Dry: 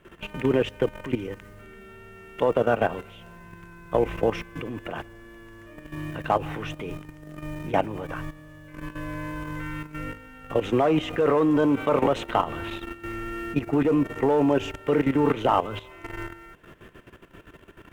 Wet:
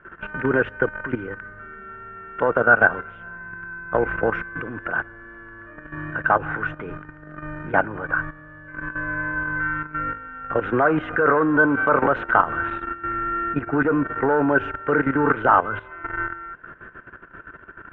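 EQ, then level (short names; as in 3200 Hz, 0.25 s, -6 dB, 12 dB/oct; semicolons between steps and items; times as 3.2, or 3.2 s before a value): synth low-pass 1500 Hz, resonance Q 9.5; 0.0 dB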